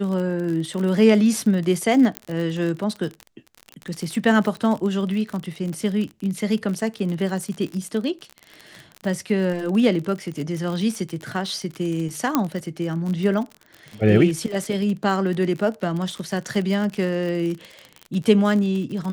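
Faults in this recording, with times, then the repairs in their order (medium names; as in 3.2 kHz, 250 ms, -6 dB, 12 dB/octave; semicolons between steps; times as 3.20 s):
crackle 42 per s -27 dBFS
2.17 s: pop -9 dBFS
12.35 s: pop -5 dBFS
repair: de-click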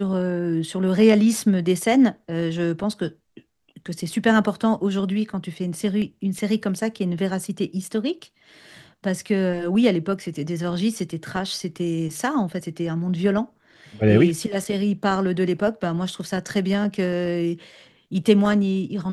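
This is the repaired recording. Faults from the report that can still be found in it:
nothing left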